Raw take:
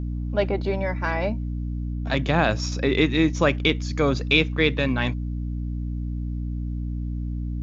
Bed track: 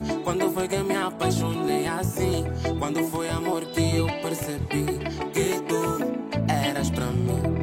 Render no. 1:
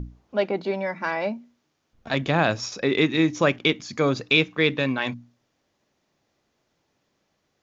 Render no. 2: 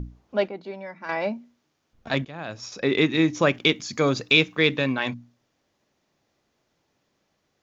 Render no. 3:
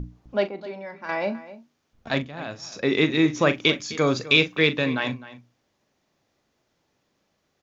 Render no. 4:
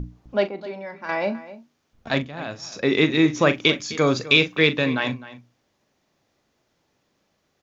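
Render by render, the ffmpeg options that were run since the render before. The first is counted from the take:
-af "bandreject=f=60:t=h:w=6,bandreject=f=120:t=h:w=6,bandreject=f=180:t=h:w=6,bandreject=f=240:t=h:w=6,bandreject=f=300:t=h:w=6"
-filter_complex "[0:a]asettb=1/sr,asplit=3[a][b][c];[a]atrim=end=3.544[d];[b]atrim=start=3.54:end=4.79,asetpts=PTS-STARTPTS,afade=t=in:d=0.004:c=qsin,afade=t=out:st=1.246:d=0.004:c=qsin,highshelf=f=5.6k:g=8.5[e];[c]atrim=start=4.786[f];[d][e]acrossfade=d=0.004:c1=hsin:c2=qsin[g];[g][f]acrossfade=d=0.004:c1=qsin:c2=hsin,asplit=4[h][i][j][k];[h]atrim=end=0.482[l];[i]atrim=start=0.478:end=1.092,asetpts=PTS-STARTPTS,volume=-9.5dB[m];[j]atrim=start=1.088:end=2.25,asetpts=PTS-STARTPTS,afade=t=out:st=1.158:d=0.004:c=hsin:silence=0.11885[n];[k]atrim=start=2.25,asetpts=PTS-STARTPTS,afade=t=in:d=0.62:c=qua:silence=0.11885[o];[l][m]acrossfade=d=0.004:c1=hsin:c2=hsin[p];[n][o]concat=n=2:v=0:a=1[q];[p][q]acrossfade=d=0.004:c1=hsin:c2=hsin"
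-filter_complex "[0:a]asplit=2[a][b];[b]adelay=40,volume=-12dB[c];[a][c]amix=inputs=2:normalize=0,asplit=2[d][e];[e]adelay=256.6,volume=-16dB,highshelf=f=4k:g=-5.77[f];[d][f]amix=inputs=2:normalize=0"
-af "volume=2dB,alimiter=limit=-3dB:level=0:latency=1"

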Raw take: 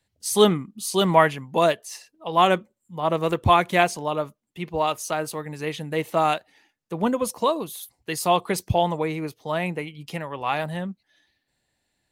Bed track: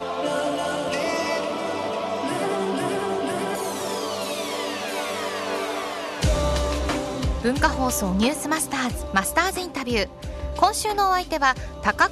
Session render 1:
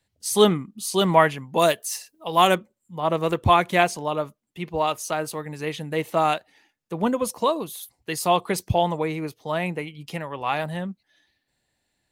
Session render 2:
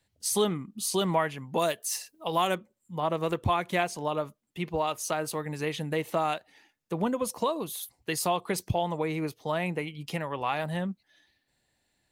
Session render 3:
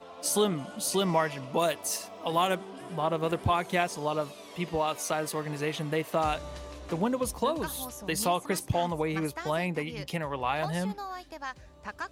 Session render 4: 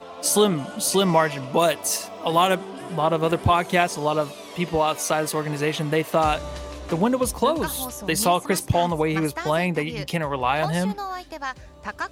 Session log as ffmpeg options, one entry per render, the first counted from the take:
-filter_complex "[0:a]asettb=1/sr,asplit=3[a][b][c];[a]atrim=end=1.594[d];[b]atrim=start=1.59:end=2.55,asetpts=PTS-STARTPTS,afade=t=in:d=0.004:c=qsin,afade=t=out:st=0.956:d=0.004:c=qsin,aemphasis=mode=production:type=50kf[e];[c]atrim=start=2.546[f];[d][e]acrossfade=d=0.004:c1=hsin:c2=qsin[g];[g][f]acrossfade=d=0.004:c1=qsin:c2=hsin"
-af "acompressor=threshold=-27dB:ratio=2.5"
-filter_complex "[1:a]volume=-18.5dB[a];[0:a][a]amix=inputs=2:normalize=0"
-af "volume=7.5dB"

